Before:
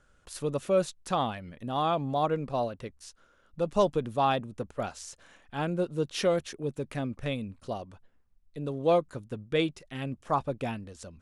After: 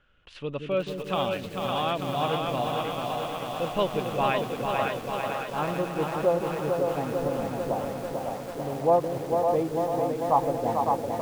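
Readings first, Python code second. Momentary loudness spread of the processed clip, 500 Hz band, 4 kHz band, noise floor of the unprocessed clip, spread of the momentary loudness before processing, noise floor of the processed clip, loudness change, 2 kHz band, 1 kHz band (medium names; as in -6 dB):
7 LU, +3.5 dB, +3.5 dB, -65 dBFS, 14 LU, -39 dBFS, +3.0 dB, +4.5 dB, +5.0 dB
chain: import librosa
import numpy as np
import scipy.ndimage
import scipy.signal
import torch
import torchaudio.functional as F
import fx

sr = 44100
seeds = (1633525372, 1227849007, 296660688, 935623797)

y = fx.filter_sweep_lowpass(x, sr, from_hz=2900.0, to_hz=860.0, start_s=3.86, end_s=6.25, q=3.8)
y = fx.echo_split(y, sr, split_hz=430.0, low_ms=174, high_ms=555, feedback_pct=52, wet_db=-4.0)
y = fx.echo_crushed(y, sr, ms=444, feedback_pct=80, bits=7, wet_db=-5)
y = y * 10.0 ** (-2.5 / 20.0)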